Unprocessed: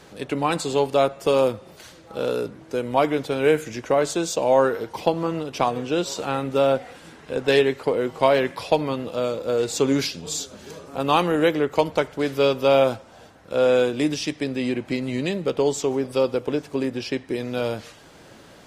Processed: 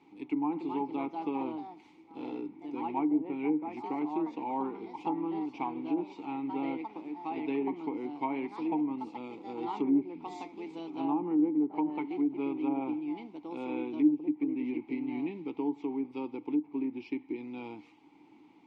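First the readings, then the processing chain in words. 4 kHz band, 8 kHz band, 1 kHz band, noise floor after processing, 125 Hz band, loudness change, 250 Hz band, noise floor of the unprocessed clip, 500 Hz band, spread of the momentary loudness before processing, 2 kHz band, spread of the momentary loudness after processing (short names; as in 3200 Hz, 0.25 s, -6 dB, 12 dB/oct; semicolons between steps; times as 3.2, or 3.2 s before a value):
under -25 dB, under -35 dB, -10.5 dB, -58 dBFS, -19.5 dB, -11.0 dB, -3.5 dB, -48 dBFS, -19.0 dB, 10 LU, -18.5 dB, 12 LU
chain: echoes that change speed 0.339 s, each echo +3 st, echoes 2, each echo -6 dB; vowel filter u; treble ducked by the level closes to 620 Hz, closed at -24.5 dBFS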